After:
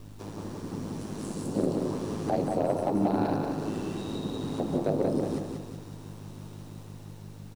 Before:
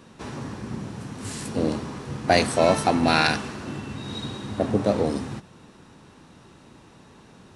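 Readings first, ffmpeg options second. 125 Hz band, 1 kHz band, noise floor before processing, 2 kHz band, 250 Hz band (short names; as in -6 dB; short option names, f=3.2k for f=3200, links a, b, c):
-3.5 dB, -8.5 dB, -51 dBFS, -19.0 dB, -2.0 dB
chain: -filter_complex "[0:a]highpass=f=180:w=0.5412,highpass=f=180:w=1.3066,equalizer=f=1.9k:w=0.73:g=-9,acrossover=split=380|1000[a][b][c];[c]acompressor=threshold=-48dB:ratio=10[d];[a][b][d]amix=inputs=3:normalize=0,alimiter=limit=-19.5dB:level=0:latency=1:release=290,dynaudnorm=f=160:g=11:m=5dB,aeval=exprs='val(0)+0.00891*(sin(2*PI*50*n/s)+sin(2*PI*2*50*n/s)/2+sin(2*PI*3*50*n/s)/3+sin(2*PI*4*50*n/s)/4+sin(2*PI*5*50*n/s)/5)':c=same,aeval=exprs='val(0)*sin(2*PI*53*n/s)':c=same,acrusher=bits=9:mix=0:aa=0.000001,volume=17dB,asoftclip=hard,volume=-17dB,aecho=1:1:183|366|549|732|915:0.631|0.271|0.117|0.0502|0.0216"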